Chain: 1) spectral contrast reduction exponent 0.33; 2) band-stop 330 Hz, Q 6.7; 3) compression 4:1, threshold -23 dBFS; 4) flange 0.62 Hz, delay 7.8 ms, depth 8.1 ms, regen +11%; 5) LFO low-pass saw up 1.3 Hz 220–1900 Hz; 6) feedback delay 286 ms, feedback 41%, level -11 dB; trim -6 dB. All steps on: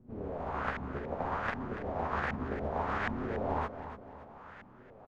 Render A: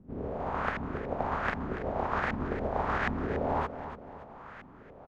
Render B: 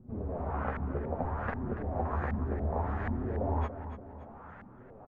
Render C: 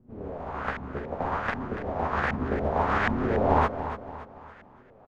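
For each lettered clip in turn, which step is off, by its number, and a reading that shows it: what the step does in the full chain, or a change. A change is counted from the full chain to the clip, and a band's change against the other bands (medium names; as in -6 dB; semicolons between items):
4, loudness change +3.0 LU; 1, 125 Hz band +8.0 dB; 3, momentary loudness spread change -1 LU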